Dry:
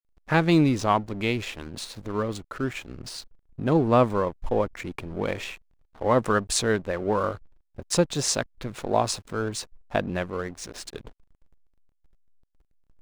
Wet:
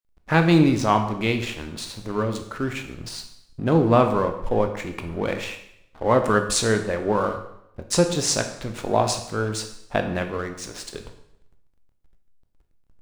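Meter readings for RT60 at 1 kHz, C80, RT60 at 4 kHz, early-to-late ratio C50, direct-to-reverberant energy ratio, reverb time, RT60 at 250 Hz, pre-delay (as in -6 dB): 0.75 s, 11.5 dB, 0.70 s, 9.0 dB, 5.5 dB, 0.75 s, 0.75 s, 8 ms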